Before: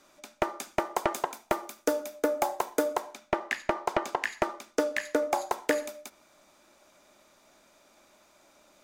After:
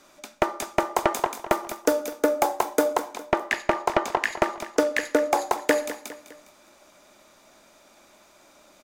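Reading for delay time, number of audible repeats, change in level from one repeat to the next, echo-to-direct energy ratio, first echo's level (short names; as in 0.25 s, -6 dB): 0.204 s, 3, -6.5 dB, -12.5 dB, -13.5 dB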